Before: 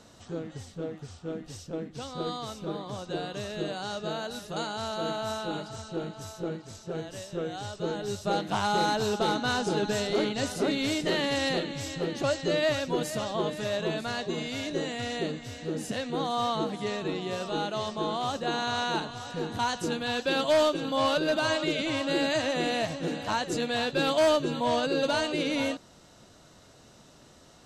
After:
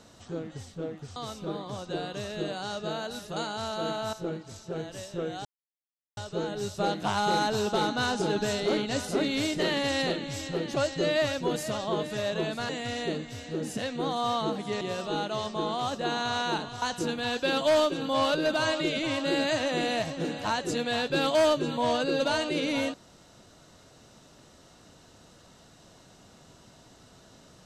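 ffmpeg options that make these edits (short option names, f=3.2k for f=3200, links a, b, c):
-filter_complex "[0:a]asplit=7[a][b][c][d][e][f][g];[a]atrim=end=1.162[h];[b]atrim=start=2.358:end=5.332[i];[c]atrim=start=6.318:end=7.64,asetpts=PTS-STARTPTS,afade=t=out:st=1.318:d=0.004:c=hsin,apad=pad_dur=0.72[j];[d]atrim=start=7.64:end=14.162,asetpts=PTS-STARTPTS,afade=t=in:d=0.004:c=hsin[k];[e]atrim=start=14.828:end=16.952[l];[f]atrim=start=17.228:end=19.242[m];[g]atrim=start=19.648[n];[h][i]acrossfade=d=0.004:c1=hsin:c2=hsin[o];[j][k]concat=n=2:v=0:a=1[p];[o][p]acrossfade=d=0.004:c1=hsin:c2=hsin[q];[q][l]acrossfade=d=0.004:c1=hsin:c2=hsin[r];[r][m]acrossfade=d=0.004:c1=hsin:c2=hsin[s];[s][n]acrossfade=d=0.004:c1=hsin:c2=hsin"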